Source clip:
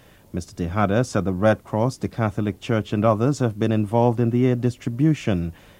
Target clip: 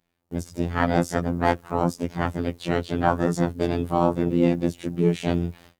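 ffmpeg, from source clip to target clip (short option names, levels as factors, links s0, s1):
-filter_complex "[0:a]asplit=3[s0][s1][s2];[s1]asetrate=55563,aresample=44100,atempo=0.793701,volume=0.447[s3];[s2]asetrate=58866,aresample=44100,atempo=0.749154,volume=0.794[s4];[s0][s3][s4]amix=inputs=3:normalize=0,afftfilt=real='hypot(re,im)*cos(PI*b)':imag='0':win_size=2048:overlap=0.75,agate=range=0.0631:threshold=0.00562:ratio=16:detection=peak,volume=0.891"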